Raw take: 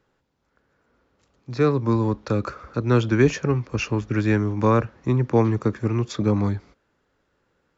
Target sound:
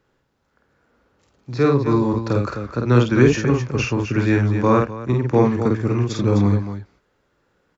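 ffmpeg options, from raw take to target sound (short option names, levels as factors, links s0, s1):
-filter_complex "[0:a]aecho=1:1:49.56|256.6:0.708|0.398,asplit=3[s0][s1][s2];[s0]afade=t=out:st=4.61:d=0.02[s3];[s1]agate=range=0.447:threshold=0.0891:ratio=16:detection=peak,afade=t=in:st=4.61:d=0.02,afade=t=out:st=5.14:d=0.02[s4];[s2]afade=t=in:st=5.14:d=0.02[s5];[s3][s4][s5]amix=inputs=3:normalize=0,volume=1.19"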